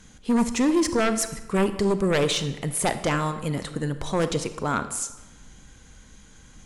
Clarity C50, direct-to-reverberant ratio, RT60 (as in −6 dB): 11.5 dB, 10.5 dB, 1.1 s